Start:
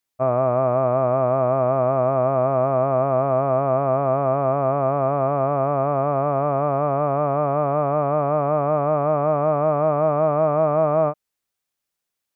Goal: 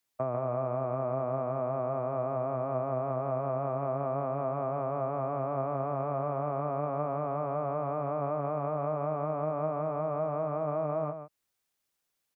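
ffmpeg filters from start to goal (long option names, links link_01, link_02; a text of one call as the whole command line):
ffmpeg -i in.wav -filter_complex "[0:a]acrossover=split=92|360[link_01][link_02][link_03];[link_01]acompressor=threshold=-55dB:ratio=4[link_04];[link_02]acompressor=threshold=-41dB:ratio=4[link_05];[link_03]acompressor=threshold=-34dB:ratio=4[link_06];[link_04][link_05][link_06]amix=inputs=3:normalize=0,asplit=2[link_07][link_08];[link_08]aecho=0:1:142:0.355[link_09];[link_07][link_09]amix=inputs=2:normalize=0" out.wav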